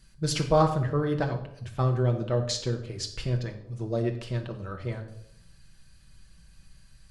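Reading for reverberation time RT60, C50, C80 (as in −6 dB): 0.75 s, 9.5 dB, 12.5 dB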